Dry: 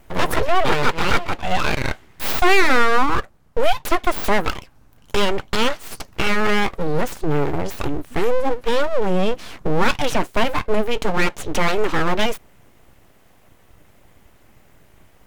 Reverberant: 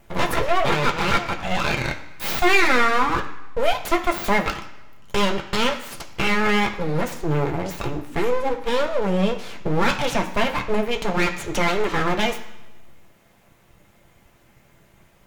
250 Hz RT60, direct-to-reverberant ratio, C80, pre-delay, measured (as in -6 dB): 0.95 s, 2.0 dB, 13.0 dB, 3 ms